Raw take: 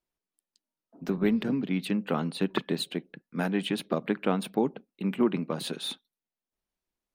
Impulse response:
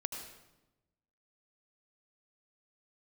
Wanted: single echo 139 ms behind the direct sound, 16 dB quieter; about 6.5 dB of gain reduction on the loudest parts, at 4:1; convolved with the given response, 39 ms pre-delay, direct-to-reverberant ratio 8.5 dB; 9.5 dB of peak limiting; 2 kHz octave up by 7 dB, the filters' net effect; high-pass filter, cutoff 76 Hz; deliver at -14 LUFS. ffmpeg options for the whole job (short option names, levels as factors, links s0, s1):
-filter_complex "[0:a]highpass=76,equalizer=f=2000:t=o:g=9,acompressor=threshold=0.0447:ratio=4,alimiter=limit=0.0668:level=0:latency=1,aecho=1:1:139:0.158,asplit=2[s0][s1];[1:a]atrim=start_sample=2205,adelay=39[s2];[s1][s2]afir=irnorm=-1:irlink=0,volume=0.355[s3];[s0][s3]amix=inputs=2:normalize=0,volume=10.6"